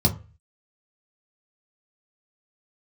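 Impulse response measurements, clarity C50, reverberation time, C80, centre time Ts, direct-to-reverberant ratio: 14.5 dB, 0.35 s, 20.0 dB, 11 ms, 0.0 dB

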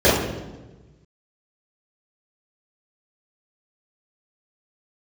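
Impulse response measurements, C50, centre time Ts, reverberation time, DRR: 3.0 dB, 65 ms, 1.2 s, −12.0 dB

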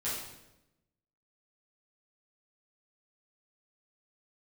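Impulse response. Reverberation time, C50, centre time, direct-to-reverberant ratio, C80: 0.95 s, 1.0 dB, 62 ms, −10.0 dB, 4.0 dB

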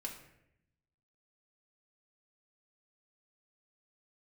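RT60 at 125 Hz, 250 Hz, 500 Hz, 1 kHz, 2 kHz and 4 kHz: 1.3, 1.1, 0.90, 0.70, 0.80, 0.55 seconds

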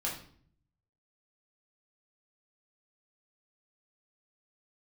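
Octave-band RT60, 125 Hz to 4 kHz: 1.1, 0.80, 0.55, 0.50, 0.45, 0.45 seconds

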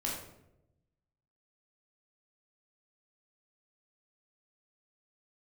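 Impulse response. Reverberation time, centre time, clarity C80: 0.85 s, 49 ms, 6.0 dB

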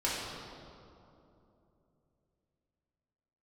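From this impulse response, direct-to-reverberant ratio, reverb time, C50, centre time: −8.0 dB, 2.9 s, −1.0 dB, 129 ms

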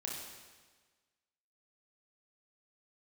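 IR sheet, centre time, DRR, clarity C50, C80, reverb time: 73 ms, −3.0 dB, 1.0 dB, 3.5 dB, 1.4 s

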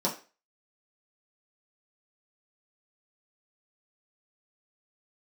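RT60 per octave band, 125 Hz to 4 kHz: 0.20, 0.30, 0.35, 0.35, 0.35, 0.35 seconds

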